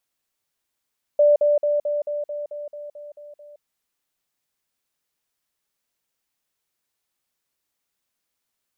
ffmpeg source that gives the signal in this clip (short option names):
-f lavfi -i "aevalsrc='pow(10,(-11.5-3*floor(t/0.22))/20)*sin(2*PI*588*t)*clip(min(mod(t,0.22),0.17-mod(t,0.22))/0.005,0,1)':d=2.42:s=44100"